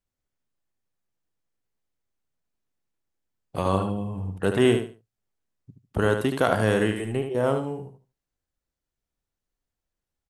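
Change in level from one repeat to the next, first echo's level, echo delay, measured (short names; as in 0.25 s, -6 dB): -12.5 dB, -7.0 dB, 74 ms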